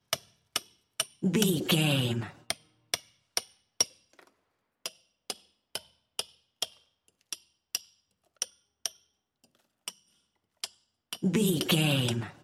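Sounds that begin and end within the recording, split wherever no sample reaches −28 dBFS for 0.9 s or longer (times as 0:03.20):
0:04.86–0:08.86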